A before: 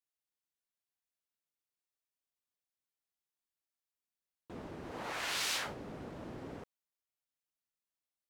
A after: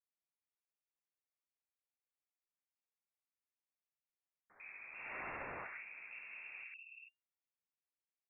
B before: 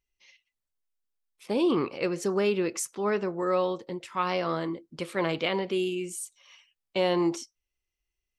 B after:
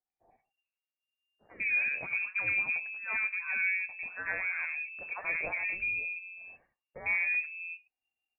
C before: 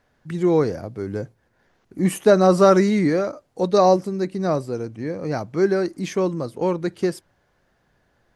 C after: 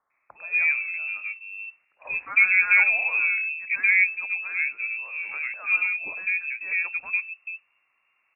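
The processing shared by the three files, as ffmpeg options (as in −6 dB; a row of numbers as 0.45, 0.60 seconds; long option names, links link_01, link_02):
-filter_complex "[0:a]aeval=exprs='0.75*(cos(1*acos(clip(val(0)/0.75,-1,1)))-cos(1*PI/2))+0.0188*(cos(4*acos(clip(val(0)/0.75,-1,1)))-cos(4*PI/2))+0.0106*(cos(6*acos(clip(val(0)/0.75,-1,1)))-cos(6*PI/2))+0.00473*(cos(7*acos(clip(val(0)/0.75,-1,1)))-cos(7*PI/2))':channel_layout=same,acrossover=split=220|1300[link_01][link_02][link_03];[link_02]adelay=100[link_04];[link_01]adelay=440[link_05];[link_05][link_04][link_03]amix=inputs=3:normalize=0,lowpass=frequency=2400:width_type=q:width=0.5098,lowpass=frequency=2400:width_type=q:width=0.6013,lowpass=frequency=2400:width_type=q:width=0.9,lowpass=frequency=2400:width_type=q:width=2.563,afreqshift=-2800,volume=-3.5dB"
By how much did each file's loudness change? −8.5, −2.5, −1.5 LU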